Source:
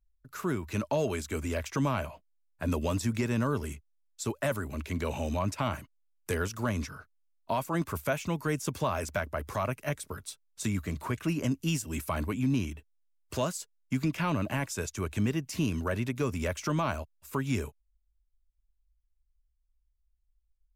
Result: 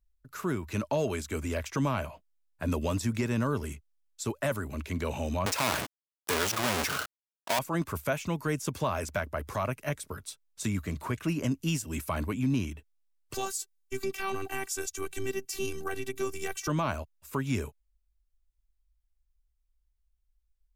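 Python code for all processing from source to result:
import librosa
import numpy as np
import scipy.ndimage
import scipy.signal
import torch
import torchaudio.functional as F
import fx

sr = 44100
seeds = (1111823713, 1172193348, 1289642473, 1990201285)

y = fx.chain(x, sr, fx.halfwave_hold(),
    fx.highpass(hz=690.0, slope=6),
    fx.env_flatten(amount_pct=70), at=(5.46, 7.59))
y = fx.chain(y, sr, fx.high_shelf(hz=5100.0, db=8.5),
    fx.robotise(hz=388.0), at=(13.34, 16.68))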